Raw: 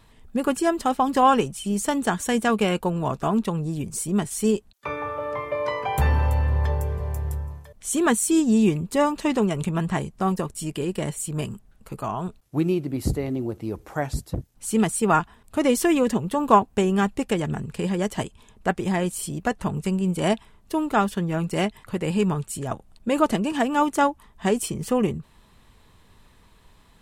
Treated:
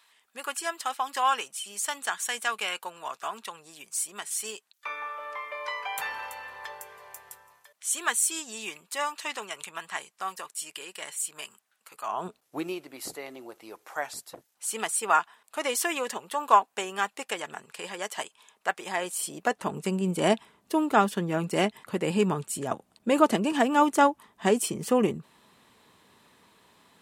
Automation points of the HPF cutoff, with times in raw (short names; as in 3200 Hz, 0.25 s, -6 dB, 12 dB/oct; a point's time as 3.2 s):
12 s 1300 Hz
12.27 s 320 Hz
12.88 s 840 Hz
18.77 s 840 Hz
20 s 220 Hz